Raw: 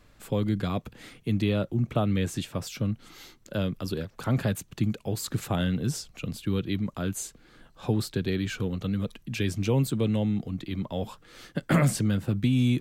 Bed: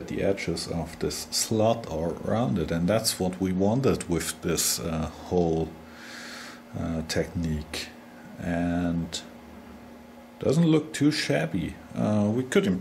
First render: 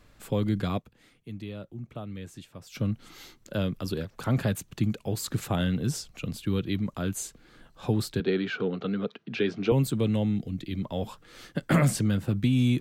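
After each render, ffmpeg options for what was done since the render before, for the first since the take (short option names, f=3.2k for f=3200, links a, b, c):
-filter_complex "[0:a]asettb=1/sr,asplit=3[a][b][c];[a]atrim=end=8.204[d];[b]atrim=start=8.2:end=9.72,asetpts=PTS-STARTPTS,afade=t=in:d=0.004:c=qsin,afade=t=out:st=1.516:d=0.004:c=qsin,highpass=f=160:w=0.5412,highpass=f=160:w=1.3066,equalizer=f=420:t=q:w=4:g=9,equalizer=f=740:t=q:w=4:g=6,equalizer=f=1.4k:t=q:w=4:g=8,lowpass=f=4.4k:w=0.5412,lowpass=f=4.4k:w=1.3066[e];[c]atrim=start=9.716[f];[d][e]acrossfade=d=0.004:c1=hsin:c2=qsin[g];[g][f]acrossfade=d=0.004:c1=qsin:c2=hsin,asettb=1/sr,asplit=3[h][i][j];[h]atrim=end=10.364[k];[i]atrim=start=10.36:end=10.83,asetpts=PTS-STARTPTS,afade=t=in:d=0.004:c=qsin,afade=t=out:st=0.466:d=0.004:c=qsin,equalizer=f=1k:t=o:w=0.84:g=-12.5[l];[j]atrim=start=10.826[m];[k][l]acrossfade=d=0.004:c1=hsin:c2=qsin[n];[n][m]acrossfade=d=0.004:c1=qsin:c2=hsin,asplit=3[o][p][q];[o]atrim=end=1.02,asetpts=PTS-STARTPTS,afade=t=out:st=0.77:d=0.25:c=exp:silence=0.223872[r];[p]atrim=start=1.02:end=2.51,asetpts=PTS-STARTPTS,volume=-13dB[s];[q]atrim=start=2.51,asetpts=PTS-STARTPTS,afade=t=in:d=0.25:c=exp:silence=0.223872[t];[r][s][t]concat=n=3:v=0:a=1"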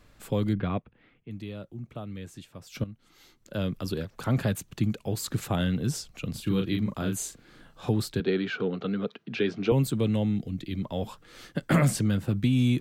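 -filter_complex "[0:a]asettb=1/sr,asplit=3[a][b][c];[a]atrim=end=0.534[d];[b]atrim=start=0.53:end=1.31,asetpts=PTS-STARTPTS,afade=t=in:d=0.004:c=qsin,afade=t=out:st=0.776:d=0.004:c=qsin,lowpass=f=2.9k:w=0.5412,lowpass=f=2.9k:w=1.3066[e];[c]atrim=start=1.306[f];[d][e]acrossfade=d=0.004:c1=hsin:c2=qsin[g];[g][f]acrossfade=d=0.004:c1=qsin:c2=hsin,asettb=1/sr,asplit=3[h][i][j];[h]atrim=end=6.314[k];[i]atrim=start=6.31:end=7.89,asetpts=PTS-STARTPTS,afade=t=in:d=0.004:c=qsin,afade=t=out:st=1.576:d=0.004:c=qsin,asplit=2[l][m];[m]adelay=37,volume=-4dB[n];[l][n]amix=inputs=2:normalize=0,atrim=end_sample=69678[o];[j]atrim=start=7.886[p];[k][o]acrossfade=d=0.004:c1=hsin:c2=qsin[q];[q][p]acrossfade=d=0.004:c1=qsin:c2=hsin,asplit=2[r][s];[r]atrim=end=2.84,asetpts=PTS-STARTPTS,afade=t=out:st=2.836:d=0.004:c=hsin:silence=0.188365[t];[s]atrim=start=2.84,asetpts=PTS-STARTPTS,afade=t=in:d=0.86:c=qua:silence=0.188365[u];[t][u]concat=n=2:v=0:a=1"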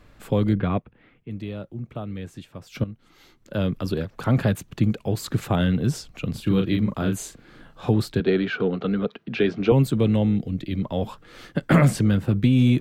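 -filter_complex "[0:a]asplit=2[a][b];[b]adynamicsmooth=sensitivity=0.5:basefreq=4.7k,volume=1dB[c];[a][c]amix=inputs=2:normalize=0,tremolo=f=260:d=0.182"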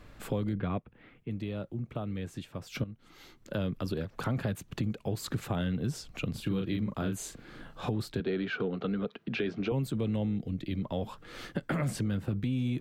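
-af "alimiter=limit=-13.5dB:level=0:latency=1:release=12,acompressor=threshold=-33dB:ratio=2.5"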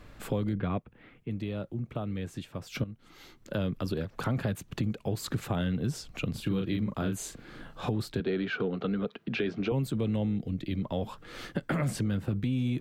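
-af "volume=1.5dB"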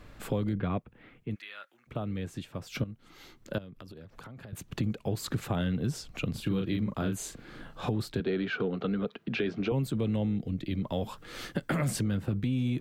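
-filter_complex "[0:a]asplit=3[a][b][c];[a]afade=t=out:st=1.34:d=0.02[d];[b]highpass=f=1.6k:t=q:w=2.5,afade=t=in:st=1.34:d=0.02,afade=t=out:st=1.86:d=0.02[e];[c]afade=t=in:st=1.86:d=0.02[f];[d][e][f]amix=inputs=3:normalize=0,asettb=1/sr,asplit=3[g][h][i];[g]atrim=end=3.584[j];[h]atrim=start=3.58:end=4.53,asetpts=PTS-STARTPTS,afade=t=in:d=0.004:c=qsin,afade=t=out:st=0.946:d=0.004:c=qsin,acompressor=threshold=-44dB:ratio=8:attack=3.2:release=140:knee=1:detection=peak[k];[i]atrim=start=4.526[l];[j][k]acrossfade=d=0.004:c1=hsin:c2=qsin[m];[m][l]acrossfade=d=0.004:c1=qsin:c2=hsin,asettb=1/sr,asplit=3[n][o][p];[n]atrim=end=10.854[q];[o]atrim=start=10.85:end=12.02,asetpts=PTS-STARTPTS,afade=t=in:d=0.004:c=qsin,afade=t=out:st=1.166:d=0.004:c=qsin,highshelf=f=4.4k:g=6.5[r];[p]atrim=start=12.016[s];[q][r]acrossfade=d=0.004:c1=hsin:c2=qsin[t];[t][s]acrossfade=d=0.004:c1=qsin:c2=hsin"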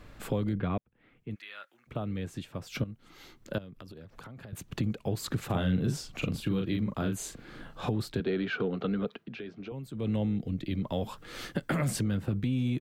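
-filter_complex "[0:a]asplit=3[a][b][c];[a]afade=t=out:st=5.49:d=0.02[d];[b]asplit=2[e][f];[f]adelay=43,volume=-5dB[g];[e][g]amix=inputs=2:normalize=0,afade=t=in:st=5.49:d=0.02,afade=t=out:st=6.35:d=0.02[h];[c]afade=t=in:st=6.35:d=0.02[i];[d][h][i]amix=inputs=3:normalize=0,asplit=4[j][k][l][m];[j]atrim=end=0.78,asetpts=PTS-STARTPTS,afade=t=out:st=0.776:d=0.004:c=hsin[n];[k]atrim=start=0.78:end=9.37,asetpts=PTS-STARTPTS,afade=t=in:d=0.77,afade=t=out:st=8.38:d=0.21:c=qua:silence=0.281838[o];[l]atrim=start=9.37:end=9.87,asetpts=PTS-STARTPTS,volume=-11dB[p];[m]atrim=start=9.87,asetpts=PTS-STARTPTS,afade=t=in:d=0.21:c=qua:silence=0.281838[q];[n][o][p][q]concat=n=4:v=0:a=1"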